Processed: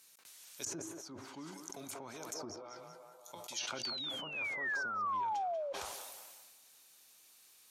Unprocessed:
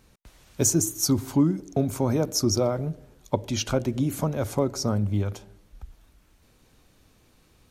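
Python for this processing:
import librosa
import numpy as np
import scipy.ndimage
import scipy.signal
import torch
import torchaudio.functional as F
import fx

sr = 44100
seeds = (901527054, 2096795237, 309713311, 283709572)

p1 = fx.comb_fb(x, sr, f0_hz=170.0, decay_s=0.19, harmonics='all', damping=0.0, mix_pct=80, at=(2.56, 3.68))
p2 = fx.over_compress(p1, sr, threshold_db=-31.0, ratio=-1.0)
p3 = p1 + (p2 * librosa.db_to_amplitude(-3.0))
p4 = scipy.signal.sosfilt(scipy.signal.butter(2, 91.0, 'highpass', fs=sr, output='sos'), p3)
p5 = np.diff(p4, prepend=0.0)
p6 = fx.echo_banded(p5, sr, ms=188, feedback_pct=72, hz=810.0, wet_db=-4)
p7 = fx.spec_paint(p6, sr, seeds[0], shape='fall', start_s=3.83, length_s=1.9, low_hz=540.0, high_hz=4700.0, level_db=-33.0)
p8 = fx.env_lowpass_down(p7, sr, base_hz=1200.0, full_db=-27.0)
p9 = fx.dynamic_eq(p8, sr, hz=550.0, q=3.1, threshold_db=-53.0, ratio=4.0, max_db=-5)
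p10 = fx.sustainer(p9, sr, db_per_s=26.0)
y = p10 * librosa.db_to_amplitude(-1.5)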